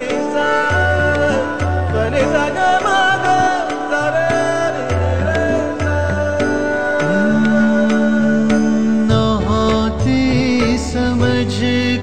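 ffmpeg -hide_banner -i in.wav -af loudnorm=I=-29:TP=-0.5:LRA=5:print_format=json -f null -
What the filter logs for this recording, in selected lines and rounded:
"input_i" : "-15.5",
"input_tp" : "-2.5",
"input_lra" : "1.3",
"input_thresh" : "-25.5",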